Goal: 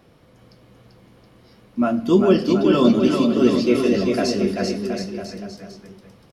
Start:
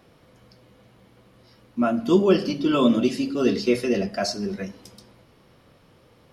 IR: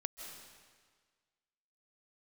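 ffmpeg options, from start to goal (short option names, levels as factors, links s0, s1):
-filter_complex "[0:a]lowshelf=f=460:g=3.5,asplit=2[s0][s1];[s1]aecho=0:1:390|721.5|1003|1243|1446:0.631|0.398|0.251|0.158|0.1[s2];[s0][s2]amix=inputs=2:normalize=0"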